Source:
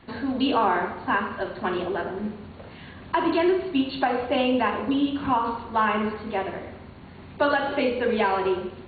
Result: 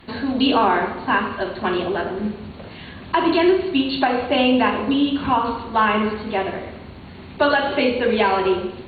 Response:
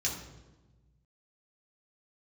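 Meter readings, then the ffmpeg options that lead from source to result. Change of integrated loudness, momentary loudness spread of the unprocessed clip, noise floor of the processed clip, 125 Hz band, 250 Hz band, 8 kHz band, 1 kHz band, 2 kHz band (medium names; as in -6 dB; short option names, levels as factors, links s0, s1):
+5.0 dB, 19 LU, -39 dBFS, +5.0 dB, +5.5 dB, no reading, +4.5 dB, +5.5 dB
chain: -filter_complex "[0:a]aemphasis=mode=production:type=cd,asplit=2[s0][s1];[1:a]atrim=start_sample=2205,asetrate=40572,aresample=44100[s2];[s1][s2]afir=irnorm=-1:irlink=0,volume=0.141[s3];[s0][s3]amix=inputs=2:normalize=0,volume=1.68"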